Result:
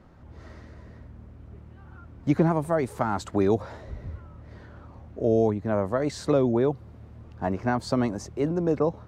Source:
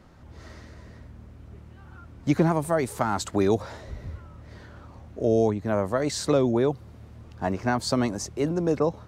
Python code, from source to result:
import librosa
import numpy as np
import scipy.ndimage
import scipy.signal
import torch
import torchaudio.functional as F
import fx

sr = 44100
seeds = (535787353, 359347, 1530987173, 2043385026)

y = fx.high_shelf(x, sr, hz=2900.0, db=-10.5)